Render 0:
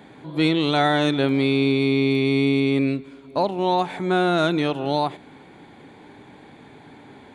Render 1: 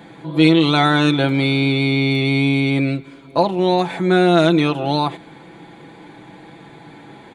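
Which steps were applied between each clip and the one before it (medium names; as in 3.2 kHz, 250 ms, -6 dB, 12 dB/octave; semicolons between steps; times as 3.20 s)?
comb 6 ms, depth 61%; trim +4 dB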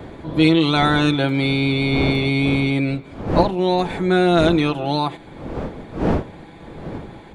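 wind noise 400 Hz -26 dBFS; trim -2 dB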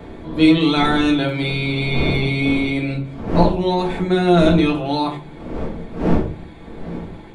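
simulated room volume 240 m³, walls furnished, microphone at 1.6 m; trim -3 dB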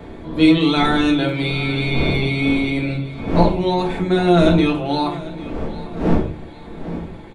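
feedback delay 797 ms, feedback 41%, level -17.5 dB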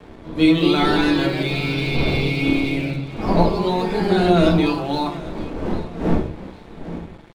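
ever faster or slower copies 272 ms, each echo +2 st, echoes 2, each echo -6 dB; crossover distortion -40.5 dBFS; trim -2 dB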